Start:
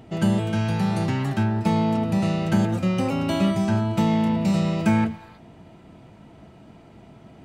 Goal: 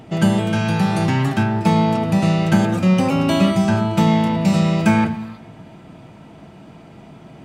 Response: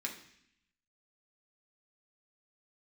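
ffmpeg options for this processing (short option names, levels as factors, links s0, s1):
-filter_complex "[0:a]asplit=2[s0][s1];[1:a]atrim=start_sample=2205,asetrate=28224,aresample=44100[s2];[s1][s2]afir=irnorm=-1:irlink=0,volume=0.316[s3];[s0][s3]amix=inputs=2:normalize=0,volume=1.68"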